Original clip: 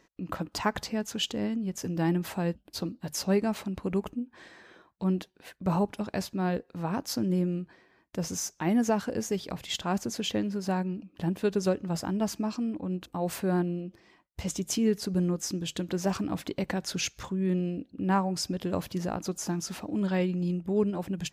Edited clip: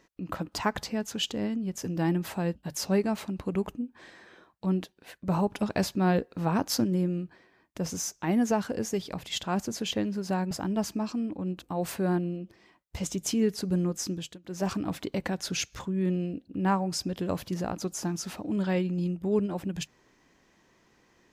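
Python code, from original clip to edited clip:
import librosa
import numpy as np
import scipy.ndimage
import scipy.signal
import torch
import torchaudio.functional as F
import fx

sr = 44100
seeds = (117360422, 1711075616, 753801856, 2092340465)

y = fx.edit(x, sr, fx.cut(start_s=2.63, length_s=0.38),
    fx.clip_gain(start_s=5.9, length_s=1.32, db=4.5),
    fx.cut(start_s=10.89, length_s=1.06),
    fx.fade_down_up(start_s=15.57, length_s=0.55, db=-21.5, fade_s=0.26), tone=tone)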